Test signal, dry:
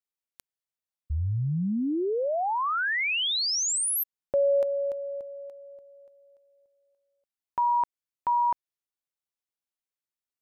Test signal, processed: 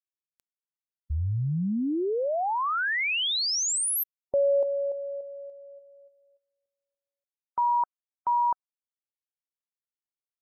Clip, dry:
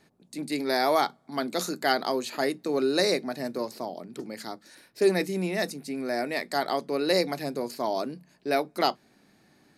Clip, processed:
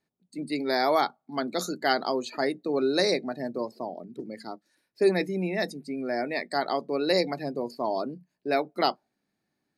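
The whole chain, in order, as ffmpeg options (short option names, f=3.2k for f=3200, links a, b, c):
-af "afftdn=nr=19:nf=-39"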